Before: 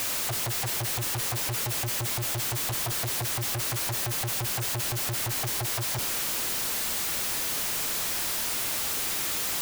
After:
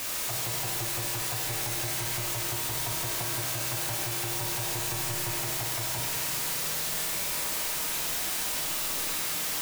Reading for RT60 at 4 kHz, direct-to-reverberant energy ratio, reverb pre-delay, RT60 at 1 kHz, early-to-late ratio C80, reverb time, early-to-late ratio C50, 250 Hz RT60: 2.6 s, −3.0 dB, 6 ms, 2.7 s, 0.5 dB, 2.7 s, −0.5 dB, 2.7 s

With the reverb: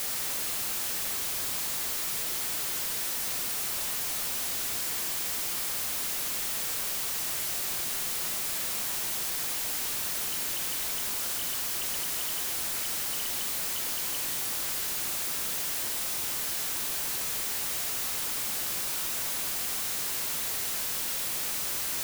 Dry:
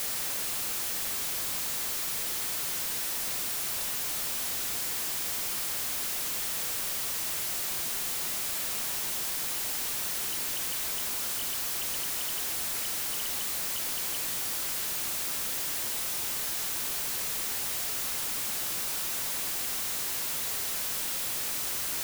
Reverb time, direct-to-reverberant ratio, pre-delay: 2.0 s, 8.0 dB, 5 ms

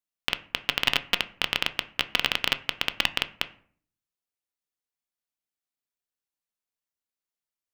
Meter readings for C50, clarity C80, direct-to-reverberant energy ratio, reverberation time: 17.5 dB, 21.5 dB, 10.5 dB, 0.50 s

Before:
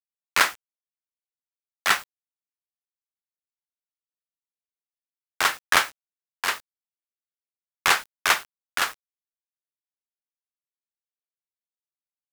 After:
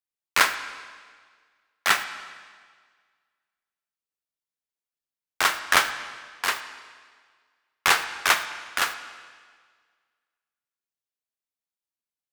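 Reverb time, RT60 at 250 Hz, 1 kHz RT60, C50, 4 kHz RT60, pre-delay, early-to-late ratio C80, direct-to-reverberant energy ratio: 1.7 s, 1.7 s, 1.7 s, 11.0 dB, 1.6 s, 31 ms, 12.0 dB, 9.5 dB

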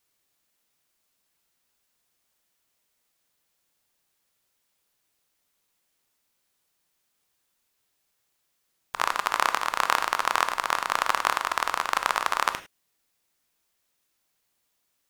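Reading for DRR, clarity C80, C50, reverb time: 9.5 dB, 16.0 dB, 12.5 dB, non-exponential decay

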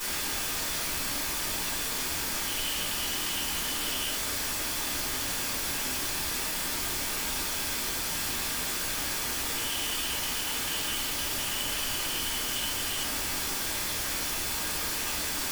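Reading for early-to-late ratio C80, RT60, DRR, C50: 12.0 dB, 0.45 s, −9.0 dB, 6.5 dB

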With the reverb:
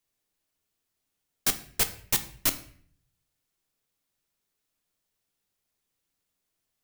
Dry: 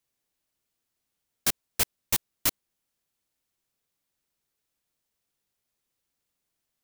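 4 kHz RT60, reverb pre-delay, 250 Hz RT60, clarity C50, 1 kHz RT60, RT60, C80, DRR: 0.45 s, 3 ms, 0.80 s, 13.5 dB, 0.50 s, 0.55 s, 17.0 dB, 8.5 dB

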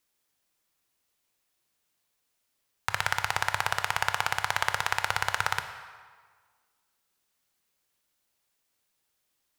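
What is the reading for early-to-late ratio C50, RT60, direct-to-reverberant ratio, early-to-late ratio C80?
9.5 dB, 1.6 s, 8.0 dB, 10.5 dB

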